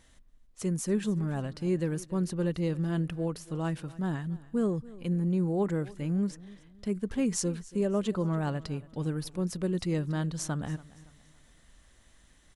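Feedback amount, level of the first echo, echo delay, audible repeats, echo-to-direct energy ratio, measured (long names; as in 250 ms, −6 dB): 38%, −20.0 dB, 282 ms, 2, −19.5 dB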